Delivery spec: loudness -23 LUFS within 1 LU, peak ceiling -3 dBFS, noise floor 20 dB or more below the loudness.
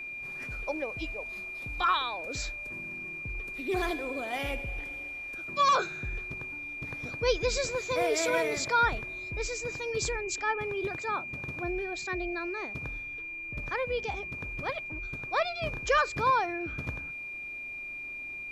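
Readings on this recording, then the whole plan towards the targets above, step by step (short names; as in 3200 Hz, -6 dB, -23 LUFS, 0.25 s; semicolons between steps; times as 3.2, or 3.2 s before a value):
steady tone 2400 Hz; tone level -37 dBFS; loudness -31.5 LUFS; peak -14.0 dBFS; loudness target -23.0 LUFS
-> notch 2400 Hz, Q 30; gain +8.5 dB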